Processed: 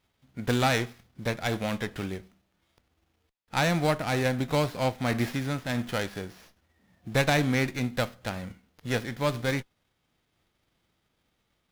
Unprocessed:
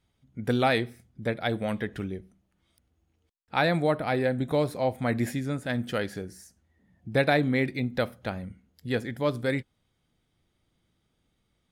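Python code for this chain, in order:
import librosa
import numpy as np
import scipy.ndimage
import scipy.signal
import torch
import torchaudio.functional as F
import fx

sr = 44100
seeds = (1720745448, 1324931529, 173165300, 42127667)

y = fx.envelope_flatten(x, sr, power=0.6)
y = fx.running_max(y, sr, window=5)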